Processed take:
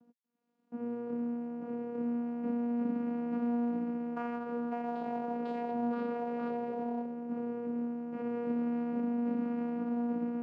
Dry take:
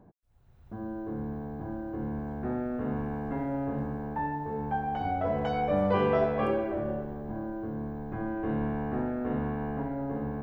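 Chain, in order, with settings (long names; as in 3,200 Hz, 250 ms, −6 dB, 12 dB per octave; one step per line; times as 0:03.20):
mu-law and A-law mismatch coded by A
brickwall limiter −26.5 dBFS, peak gain reduction 11.5 dB
channel vocoder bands 8, saw 238 Hz
level +2.5 dB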